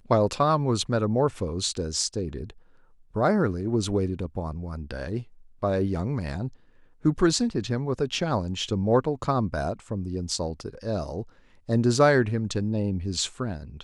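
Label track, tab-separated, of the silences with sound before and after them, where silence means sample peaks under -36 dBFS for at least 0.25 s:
2.500000	3.150000	silence
5.230000	5.620000	silence
6.480000	7.050000	silence
11.230000	11.690000	silence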